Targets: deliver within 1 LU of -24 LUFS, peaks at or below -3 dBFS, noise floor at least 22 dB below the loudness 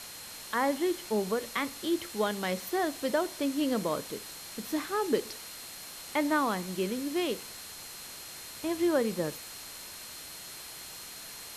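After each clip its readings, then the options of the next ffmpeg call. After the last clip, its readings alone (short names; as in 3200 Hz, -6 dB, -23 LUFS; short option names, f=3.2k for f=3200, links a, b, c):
steady tone 4200 Hz; tone level -50 dBFS; noise floor -45 dBFS; noise floor target -55 dBFS; loudness -32.5 LUFS; peak -15.0 dBFS; loudness target -24.0 LUFS
-> -af "bandreject=f=4.2k:w=30"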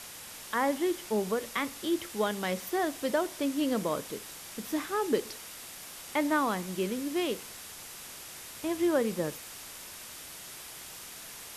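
steady tone none; noise floor -46 dBFS; noise floor target -55 dBFS
-> -af "afftdn=nr=9:nf=-46"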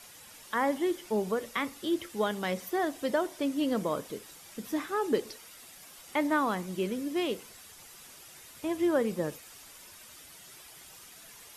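noise floor -52 dBFS; noise floor target -54 dBFS
-> -af "afftdn=nr=6:nf=-52"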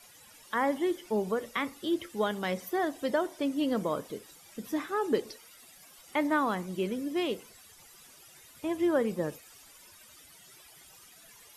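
noise floor -55 dBFS; loudness -31.5 LUFS; peak -15.5 dBFS; loudness target -24.0 LUFS
-> -af "volume=7.5dB"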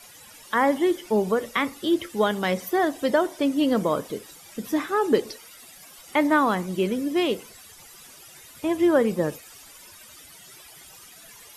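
loudness -24.0 LUFS; peak -8.0 dBFS; noise floor -48 dBFS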